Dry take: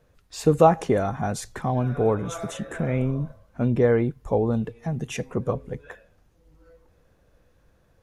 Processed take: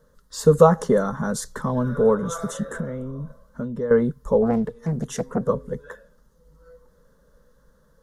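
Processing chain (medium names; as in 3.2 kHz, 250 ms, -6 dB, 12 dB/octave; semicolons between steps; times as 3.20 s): 2.71–3.91 s: compression 4:1, threshold -30 dBFS, peak gain reduction 13 dB; static phaser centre 490 Hz, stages 8; 4.42–5.48 s: loudspeaker Doppler distortion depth 0.48 ms; trim +5.5 dB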